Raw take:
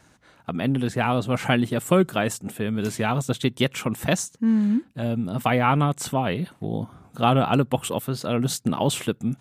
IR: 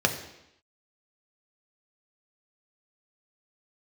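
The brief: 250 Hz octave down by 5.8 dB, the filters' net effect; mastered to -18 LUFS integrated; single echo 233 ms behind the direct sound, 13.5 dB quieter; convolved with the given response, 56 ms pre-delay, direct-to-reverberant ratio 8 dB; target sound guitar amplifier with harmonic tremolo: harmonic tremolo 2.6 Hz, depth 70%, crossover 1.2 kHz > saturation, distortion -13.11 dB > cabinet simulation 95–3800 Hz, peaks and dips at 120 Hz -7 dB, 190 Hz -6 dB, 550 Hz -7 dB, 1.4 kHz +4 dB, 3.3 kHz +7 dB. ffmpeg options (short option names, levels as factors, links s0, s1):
-filter_complex "[0:a]equalizer=f=250:t=o:g=-4,aecho=1:1:233:0.211,asplit=2[s0][s1];[1:a]atrim=start_sample=2205,adelay=56[s2];[s1][s2]afir=irnorm=-1:irlink=0,volume=0.0891[s3];[s0][s3]amix=inputs=2:normalize=0,acrossover=split=1200[s4][s5];[s4]aeval=exprs='val(0)*(1-0.7/2+0.7/2*cos(2*PI*2.6*n/s))':c=same[s6];[s5]aeval=exprs='val(0)*(1-0.7/2-0.7/2*cos(2*PI*2.6*n/s))':c=same[s7];[s6][s7]amix=inputs=2:normalize=0,asoftclip=threshold=0.112,highpass=95,equalizer=f=120:t=q:w=4:g=-7,equalizer=f=190:t=q:w=4:g=-6,equalizer=f=550:t=q:w=4:g=-7,equalizer=f=1400:t=q:w=4:g=4,equalizer=f=3300:t=q:w=4:g=7,lowpass=f=3800:w=0.5412,lowpass=f=3800:w=1.3066,volume=4.47"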